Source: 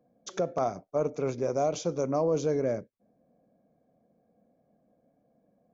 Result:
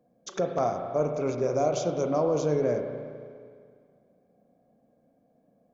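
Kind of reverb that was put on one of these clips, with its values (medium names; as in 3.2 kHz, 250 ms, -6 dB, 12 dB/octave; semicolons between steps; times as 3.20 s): spring tank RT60 2.1 s, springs 33/40 ms, chirp 80 ms, DRR 4 dB; trim +1 dB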